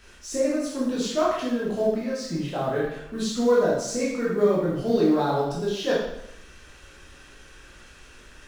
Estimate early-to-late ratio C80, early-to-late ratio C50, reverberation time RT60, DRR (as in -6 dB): 4.5 dB, 1.0 dB, 0.80 s, -7.0 dB